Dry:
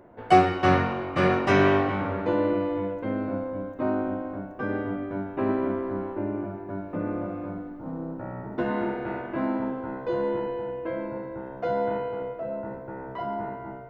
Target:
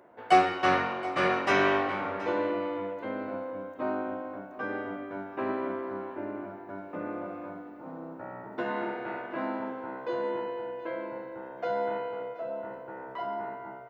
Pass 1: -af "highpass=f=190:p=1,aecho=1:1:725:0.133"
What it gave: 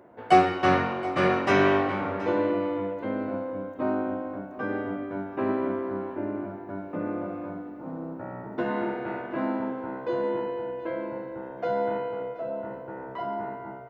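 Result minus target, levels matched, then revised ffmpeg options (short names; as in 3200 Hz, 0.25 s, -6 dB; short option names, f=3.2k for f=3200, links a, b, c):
250 Hz band +3.0 dB
-af "highpass=f=650:p=1,aecho=1:1:725:0.133"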